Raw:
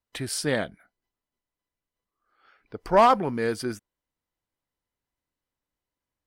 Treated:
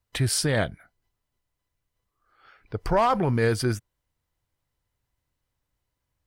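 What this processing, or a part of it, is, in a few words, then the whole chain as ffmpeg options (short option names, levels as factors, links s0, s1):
car stereo with a boomy subwoofer: -af "lowshelf=f=160:t=q:w=1.5:g=7.5,alimiter=limit=0.119:level=0:latency=1:release=30,volume=1.78"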